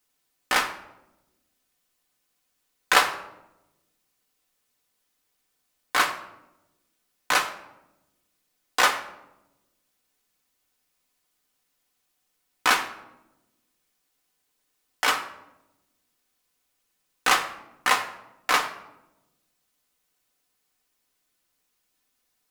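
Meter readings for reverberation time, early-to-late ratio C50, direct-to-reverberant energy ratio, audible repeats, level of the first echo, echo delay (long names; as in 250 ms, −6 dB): 0.90 s, 11.0 dB, 2.0 dB, no echo audible, no echo audible, no echo audible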